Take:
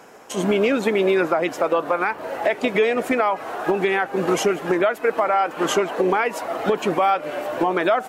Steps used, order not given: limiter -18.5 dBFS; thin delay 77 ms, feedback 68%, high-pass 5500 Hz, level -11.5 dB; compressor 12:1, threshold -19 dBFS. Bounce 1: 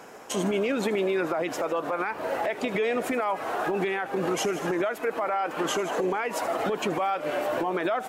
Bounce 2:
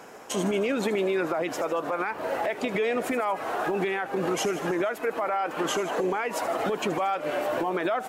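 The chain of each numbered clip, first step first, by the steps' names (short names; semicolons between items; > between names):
thin delay > compressor > limiter; compressor > limiter > thin delay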